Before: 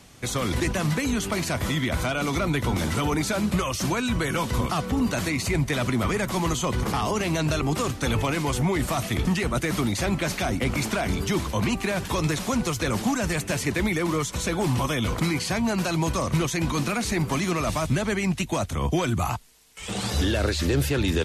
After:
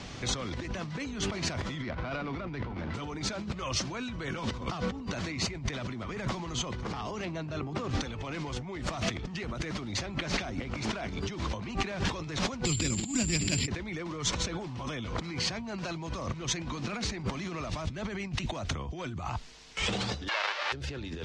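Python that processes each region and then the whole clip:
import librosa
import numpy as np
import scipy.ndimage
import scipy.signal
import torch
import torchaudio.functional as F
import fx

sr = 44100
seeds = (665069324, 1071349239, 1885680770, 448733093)

y = fx.chain(x, sr, fx.lowpass(hz=2800.0, slope=24),
    fx.running_max(window=5), at=(1.82, 2.94))
y = fx.chain(y, sr, fx.cheby1_bandpass(low_hz=100.0, high_hz=9500.0, order=2),
    fx.high_shelf(hz=2900.0, db=-10.0), at=(7.25, 7.91))
y = fx.chain(y, sr, fx.band_shelf(hz=890.0, db=-13.0, octaves=2.3),
    fx.over_compress(threshold_db=-33.0, ratio=-0.5),
    fx.resample_bad(factor=6, down='filtered', up='zero_stuff'), at=(12.65, 13.68))
y = fx.envelope_flatten(y, sr, power=0.1, at=(20.27, 20.72), fade=0.02)
y = fx.bessel_highpass(y, sr, hz=1000.0, order=4, at=(20.27, 20.72), fade=0.02)
y = fx.spacing_loss(y, sr, db_at_10k=42, at=(20.27, 20.72), fade=0.02)
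y = scipy.signal.sosfilt(scipy.signal.butter(4, 5900.0, 'lowpass', fs=sr, output='sos'), y)
y = fx.over_compress(y, sr, threshold_db=-35.0, ratio=-1.0)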